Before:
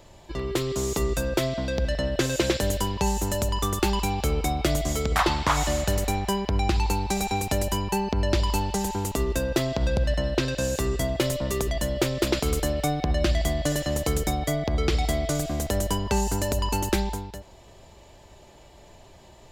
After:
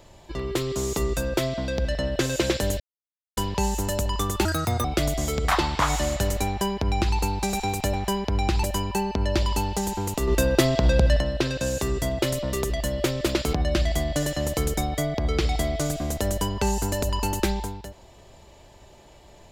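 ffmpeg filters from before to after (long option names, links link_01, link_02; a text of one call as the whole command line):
ffmpeg -i in.wav -filter_complex "[0:a]asplit=9[link_01][link_02][link_03][link_04][link_05][link_06][link_07][link_08][link_09];[link_01]atrim=end=2.8,asetpts=PTS-STARTPTS,afade=type=out:start_time=2.796:duration=0.004:curve=hsin,apad=pad_dur=0.57[link_10];[link_02]atrim=start=2.8:end=3.884,asetpts=PTS-STARTPTS,afade=type=in:duration=0.004:curve=hsin[link_11];[link_03]atrim=start=3.88:end=4.52,asetpts=PTS-STARTPTS,asetrate=71442,aresample=44100,atrim=end_sample=17422,asetpts=PTS-STARTPTS[link_12];[link_04]atrim=start=4.516:end=7.612[link_13];[link_05]atrim=start=6.138:end=6.842[link_14];[link_06]atrim=start=7.608:end=9.252[link_15];[link_07]atrim=start=9.248:end=10.182,asetpts=PTS-STARTPTS,volume=5dB[link_16];[link_08]atrim=start=10.178:end=12.512[link_17];[link_09]atrim=start=13.028[link_18];[link_10][link_11]concat=n=2:v=0:a=1[link_19];[link_19][link_12]acrossfade=duration=0.004:curve1=hsin:curve2=hsin[link_20];[link_20][link_13]acrossfade=duration=0.004:curve1=hsin:curve2=hsin[link_21];[link_21][link_14]acrossfade=duration=0.004:curve1=hsin:curve2=hsin[link_22];[link_22][link_15]acrossfade=duration=0.004:curve1=hsin:curve2=hsin[link_23];[link_23][link_16]acrossfade=duration=0.004:curve1=hsin:curve2=hsin[link_24];[link_24][link_17]acrossfade=duration=0.004:curve1=hsin:curve2=hsin[link_25];[link_25][link_18]acrossfade=duration=0.004:curve1=hsin:curve2=hsin" out.wav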